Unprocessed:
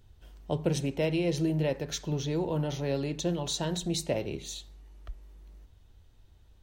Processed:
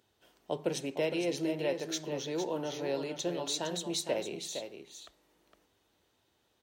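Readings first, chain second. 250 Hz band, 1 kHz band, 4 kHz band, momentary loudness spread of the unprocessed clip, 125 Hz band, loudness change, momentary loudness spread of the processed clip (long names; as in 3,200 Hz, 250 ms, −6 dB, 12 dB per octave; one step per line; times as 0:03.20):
−5.5 dB, −1.0 dB, −1.0 dB, 20 LU, −14.0 dB, −3.5 dB, 8 LU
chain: high-pass filter 310 Hz 12 dB per octave
on a send: single-tap delay 460 ms −8 dB
on the sum: level −1.5 dB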